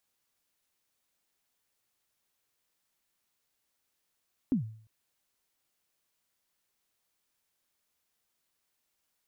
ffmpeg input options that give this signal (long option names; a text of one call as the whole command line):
ffmpeg -f lavfi -i "aevalsrc='0.0891*pow(10,-3*t/0.53)*sin(2*PI*(290*0.113/log(110/290)*(exp(log(110/290)*min(t,0.113)/0.113)-1)+110*max(t-0.113,0)))':duration=0.35:sample_rate=44100" out.wav